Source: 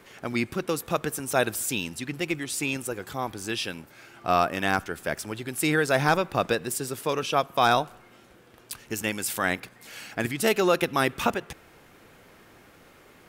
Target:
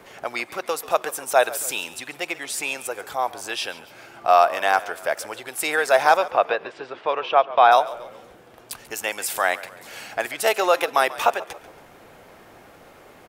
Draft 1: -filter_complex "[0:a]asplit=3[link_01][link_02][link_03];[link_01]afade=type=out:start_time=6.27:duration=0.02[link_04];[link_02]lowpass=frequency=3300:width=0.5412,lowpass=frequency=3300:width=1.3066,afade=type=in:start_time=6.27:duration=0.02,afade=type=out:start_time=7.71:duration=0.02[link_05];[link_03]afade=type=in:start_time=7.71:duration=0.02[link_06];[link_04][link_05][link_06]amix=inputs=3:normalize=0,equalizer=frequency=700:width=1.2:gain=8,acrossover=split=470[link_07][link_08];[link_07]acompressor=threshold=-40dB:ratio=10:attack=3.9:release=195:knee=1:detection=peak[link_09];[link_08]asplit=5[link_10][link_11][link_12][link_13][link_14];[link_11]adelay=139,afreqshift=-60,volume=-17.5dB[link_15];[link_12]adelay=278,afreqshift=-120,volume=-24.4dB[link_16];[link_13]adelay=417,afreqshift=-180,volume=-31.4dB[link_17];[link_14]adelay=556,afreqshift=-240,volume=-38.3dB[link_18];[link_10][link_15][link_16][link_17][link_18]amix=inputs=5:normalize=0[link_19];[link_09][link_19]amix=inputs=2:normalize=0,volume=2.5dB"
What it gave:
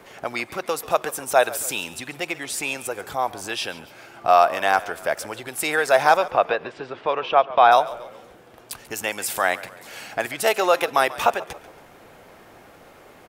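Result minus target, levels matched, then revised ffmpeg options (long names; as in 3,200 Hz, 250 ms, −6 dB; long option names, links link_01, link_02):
downward compressor: peak gain reduction −9.5 dB
-filter_complex "[0:a]asplit=3[link_01][link_02][link_03];[link_01]afade=type=out:start_time=6.27:duration=0.02[link_04];[link_02]lowpass=frequency=3300:width=0.5412,lowpass=frequency=3300:width=1.3066,afade=type=in:start_time=6.27:duration=0.02,afade=type=out:start_time=7.71:duration=0.02[link_05];[link_03]afade=type=in:start_time=7.71:duration=0.02[link_06];[link_04][link_05][link_06]amix=inputs=3:normalize=0,equalizer=frequency=700:width=1.2:gain=8,acrossover=split=470[link_07][link_08];[link_07]acompressor=threshold=-50.5dB:ratio=10:attack=3.9:release=195:knee=1:detection=peak[link_09];[link_08]asplit=5[link_10][link_11][link_12][link_13][link_14];[link_11]adelay=139,afreqshift=-60,volume=-17.5dB[link_15];[link_12]adelay=278,afreqshift=-120,volume=-24.4dB[link_16];[link_13]adelay=417,afreqshift=-180,volume=-31.4dB[link_17];[link_14]adelay=556,afreqshift=-240,volume=-38.3dB[link_18];[link_10][link_15][link_16][link_17][link_18]amix=inputs=5:normalize=0[link_19];[link_09][link_19]amix=inputs=2:normalize=0,volume=2.5dB"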